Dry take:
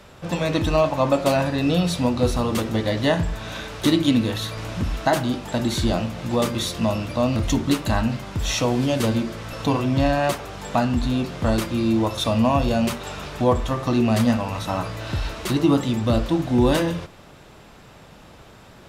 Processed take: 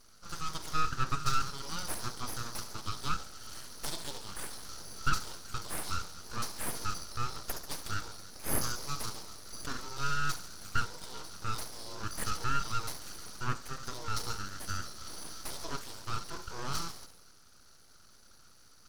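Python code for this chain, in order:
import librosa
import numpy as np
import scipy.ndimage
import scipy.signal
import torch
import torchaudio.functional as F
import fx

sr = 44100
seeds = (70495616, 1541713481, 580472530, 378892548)

p1 = fx.double_bandpass(x, sr, hz=1900.0, octaves=2.9)
p2 = fx.high_shelf(p1, sr, hz=2800.0, db=9.0)
p3 = p2 + fx.echo_wet_highpass(p2, sr, ms=69, feedback_pct=62, hz=4000.0, wet_db=-7, dry=0)
p4 = np.abs(p3)
y = F.gain(torch.from_numpy(p4), -1.0).numpy()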